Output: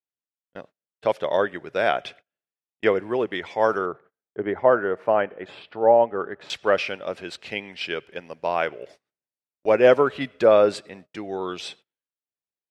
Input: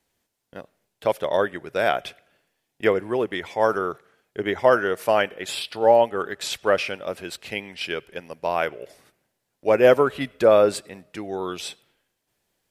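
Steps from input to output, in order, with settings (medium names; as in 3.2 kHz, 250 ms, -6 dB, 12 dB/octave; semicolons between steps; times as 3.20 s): high-pass 110 Hz 6 dB/octave; gate -46 dBFS, range -28 dB; low-pass 5.4 kHz 12 dB/octave, from 3.86 s 1.4 kHz, from 6.50 s 5.5 kHz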